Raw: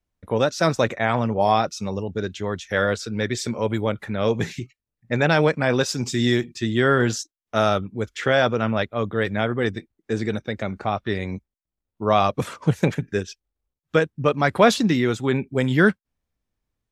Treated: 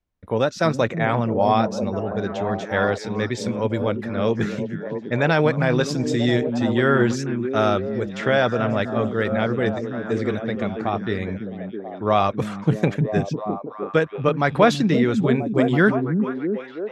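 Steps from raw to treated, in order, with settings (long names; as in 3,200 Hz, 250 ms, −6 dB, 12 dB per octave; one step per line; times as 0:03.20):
high-shelf EQ 5,800 Hz −10 dB
on a send: echo through a band-pass that steps 329 ms, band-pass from 190 Hz, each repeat 0.7 octaves, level −1 dB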